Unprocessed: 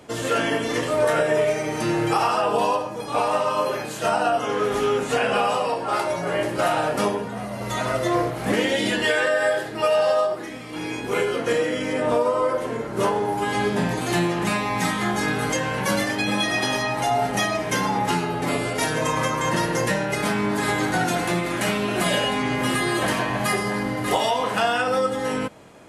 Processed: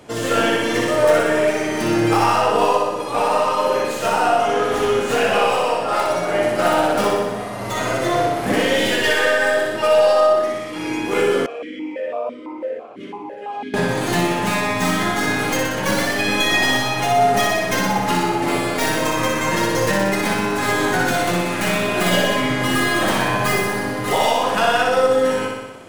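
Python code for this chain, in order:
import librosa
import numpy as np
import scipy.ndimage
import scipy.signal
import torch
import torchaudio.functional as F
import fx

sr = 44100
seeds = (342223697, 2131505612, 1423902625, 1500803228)

y = fx.tracing_dist(x, sr, depth_ms=0.057)
y = fx.room_flutter(y, sr, wall_m=10.5, rt60_s=1.1)
y = fx.vowel_held(y, sr, hz=6.0, at=(11.46, 13.74))
y = F.gain(torch.from_numpy(y), 2.0).numpy()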